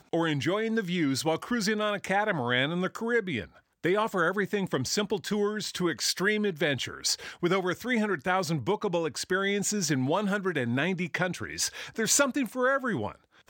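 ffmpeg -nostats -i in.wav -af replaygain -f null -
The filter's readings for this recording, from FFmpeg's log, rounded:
track_gain = +9.3 dB
track_peak = 0.220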